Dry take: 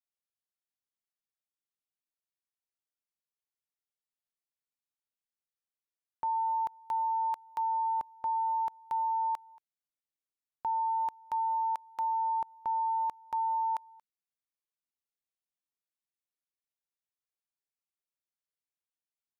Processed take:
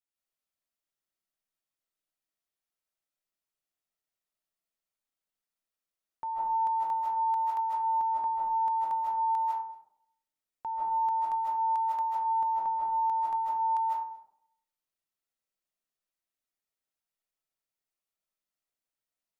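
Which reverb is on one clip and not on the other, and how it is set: algorithmic reverb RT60 0.71 s, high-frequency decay 0.35×, pre-delay 115 ms, DRR -6 dB; trim -3.5 dB

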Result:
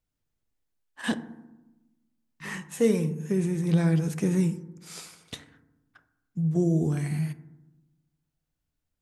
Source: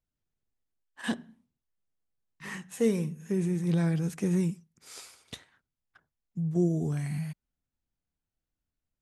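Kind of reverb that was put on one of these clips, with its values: FDN reverb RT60 1 s, low-frequency decay 1.45×, high-frequency decay 0.3×, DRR 11 dB; trim +3.5 dB

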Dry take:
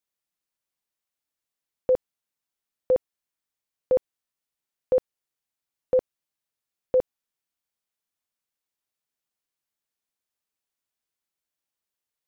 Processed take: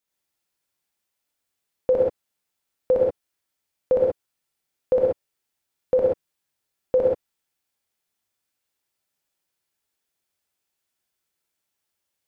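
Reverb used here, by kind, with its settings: gated-style reverb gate 150 ms rising, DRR -3 dB; trim +2.5 dB

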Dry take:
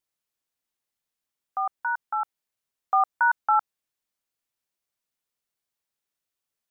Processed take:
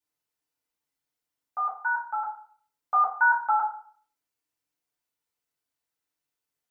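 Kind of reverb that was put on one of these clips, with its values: FDN reverb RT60 0.5 s, low-frequency decay 0.9×, high-frequency decay 0.6×, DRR -6.5 dB; trim -7 dB

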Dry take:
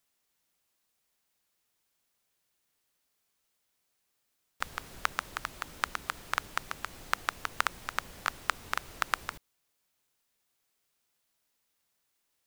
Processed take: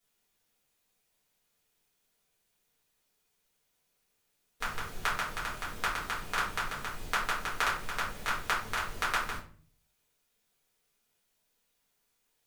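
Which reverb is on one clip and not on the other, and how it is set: simulated room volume 35 m³, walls mixed, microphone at 1.7 m; trim -7 dB

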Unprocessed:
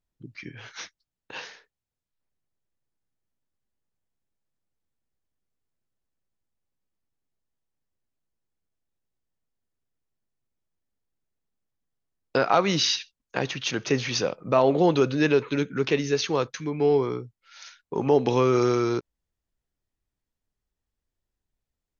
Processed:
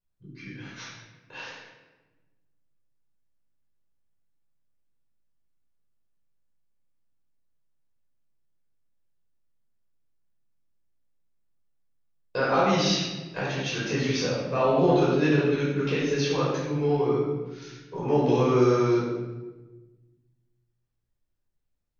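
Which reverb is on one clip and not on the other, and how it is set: simulated room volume 740 m³, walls mixed, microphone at 5.2 m; trim -12 dB

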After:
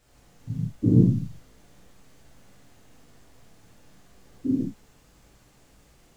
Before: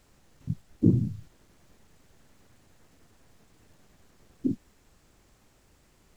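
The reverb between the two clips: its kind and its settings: gated-style reverb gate 200 ms flat, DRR -8 dB; trim -4 dB

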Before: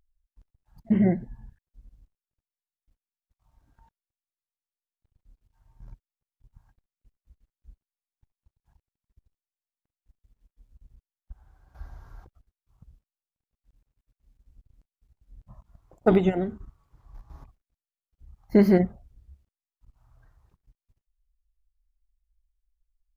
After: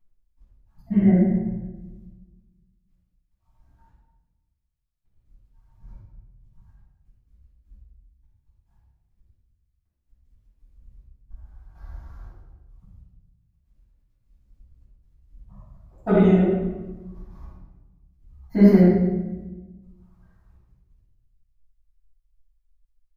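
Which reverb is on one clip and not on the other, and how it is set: simulated room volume 660 m³, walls mixed, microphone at 8.5 m; trim -14 dB

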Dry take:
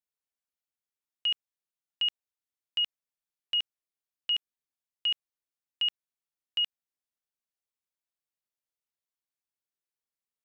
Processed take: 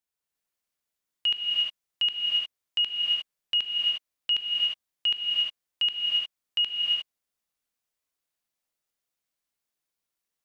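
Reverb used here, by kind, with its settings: gated-style reverb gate 380 ms rising, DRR -2.5 dB; trim +3 dB

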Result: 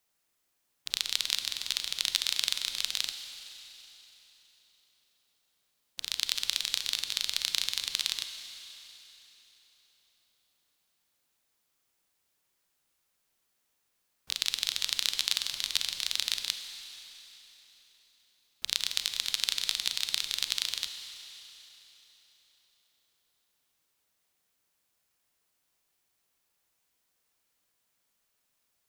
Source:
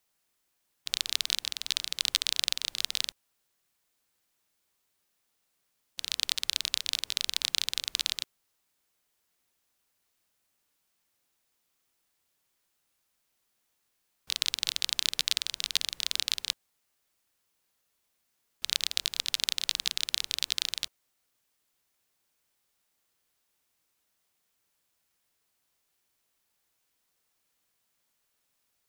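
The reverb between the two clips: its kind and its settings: Schroeder reverb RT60 3.7 s, combs from 32 ms, DRR 7.5 dB; trim -1 dB

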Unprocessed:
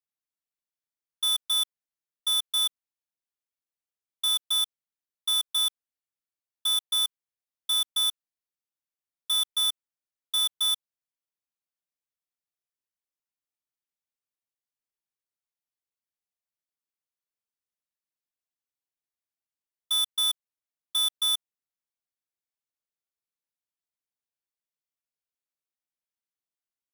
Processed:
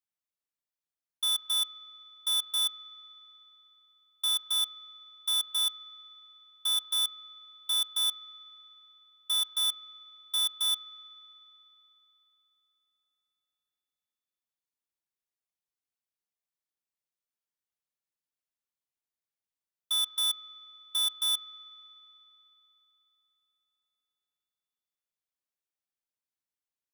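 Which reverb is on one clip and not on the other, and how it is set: spring tank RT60 3.7 s, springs 31 ms, chirp 60 ms, DRR 14 dB; trim -3 dB

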